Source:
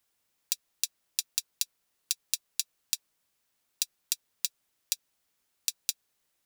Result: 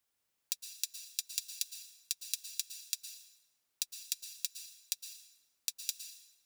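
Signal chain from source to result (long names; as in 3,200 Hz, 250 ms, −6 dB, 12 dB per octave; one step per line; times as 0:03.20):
dense smooth reverb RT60 1 s, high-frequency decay 0.85×, pre-delay 100 ms, DRR 7.5 dB
level −6 dB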